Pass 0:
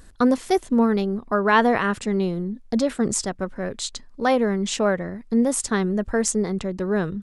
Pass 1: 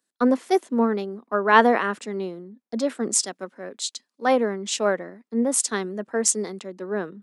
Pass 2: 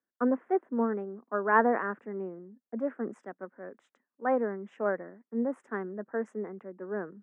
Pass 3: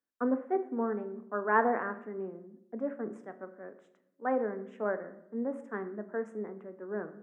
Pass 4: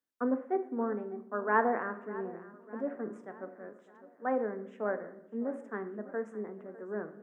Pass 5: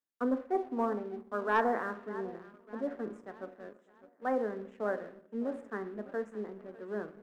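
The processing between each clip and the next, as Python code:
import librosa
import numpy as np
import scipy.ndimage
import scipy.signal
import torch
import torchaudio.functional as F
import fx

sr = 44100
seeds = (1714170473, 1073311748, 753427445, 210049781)

y1 = scipy.signal.sosfilt(scipy.signal.butter(4, 230.0, 'highpass', fs=sr, output='sos'), x)
y1 = fx.band_widen(y1, sr, depth_pct=70)
y1 = y1 * librosa.db_to_amplitude(-1.5)
y2 = scipy.signal.sosfilt(scipy.signal.ellip(3, 1.0, 40, [100.0, 1700.0], 'bandpass', fs=sr, output='sos'), y1)
y2 = y2 * librosa.db_to_amplitude(-7.0)
y3 = fx.room_shoebox(y2, sr, seeds[0], volume_m3=210.0, walls='mixed', distance_m=0.36)
y3 = y3 * librosa.db_to_amplitude(-3.0)
y4 = fx.echo_feedback(y3, sr, ms=602, feedback_pct=53, wet_db=-18)
y4 = y4 * librosa.db_to_amplitude(-1.0)
y5 = fx.spec_box(y4, sr, start_s=0.55, length_s=0.44, low_hz=580.0, high_hz=1200.0, gain_db=6)
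y5 = fx.leveller(y5, sr, passes=1)
y5 = y5 * librosa.db_to_amplitude(-4.0)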